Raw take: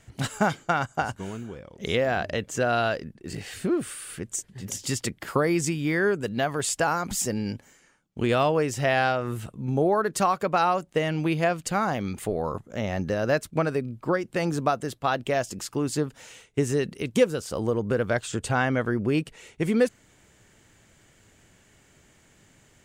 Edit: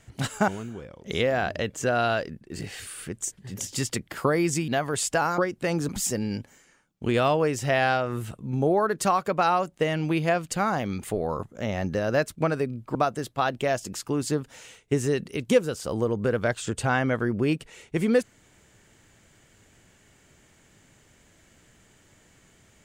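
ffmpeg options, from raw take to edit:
-filter_complex "[0:a]asplit=7[a][b][c][d][e][f][g];[a]atrim=end=0.482[h];[b]atrim=start=1.218:end=3.612[i];[c]atrim=start=3.978:end=5.792[j];[d]atrim=start=6.338:end=7.042[k];[e]atrim=start=14.098:end=14.612[l];[f]atrim=start=7.038:end=14.102[m];[g]atrim=start=14.608[n];[h][i]acrossfade=d=0.004:c1=hsin:c2=hsin[o];[o][j]acrossfade=d=0.004:c1=hsin:c2=hsin[p];[p][k]acrossfade=d=0.004:c1=hsin:c2=hsin[q];[q][l]acrossfade=d=0.004:c1=hsin:c2=hsin[r];[r][m]acrossfade=d=0.004:c1=hsin:c2=hsin[s];[s][n]acrossfade=d=0.004:c1=hsin:c2=hsin"

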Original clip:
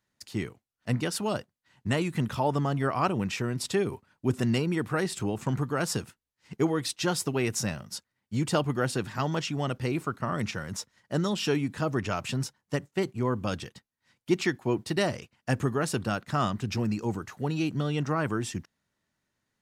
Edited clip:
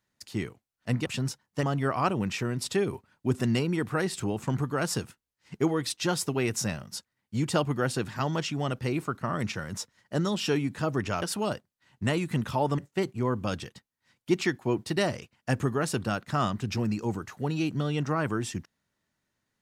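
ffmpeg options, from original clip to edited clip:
-filter_complex "[0:a]asplit=5[a][b][c][d][e];[a]atrim=end=1.062[f];[b]atrim=start=12.208:end=12.782[g];[c]atrim=start=2.618:end=12.212[h];[d]atrim=start=1.058:end=2.622[i];[e]atrim=start=12.778[j];[f][g]acrossfade=d=0.004:c1=hsin:c2=hsin[k];[k][h]acrossfade=d=0.004:c1=hsin:c2=hsin[l];[l][i]acrossfade=d=0.004:c1=hsin:c2=hsin[m];[m][j]acrossfade=d=0.004:c1=hsin:c2=hsin"

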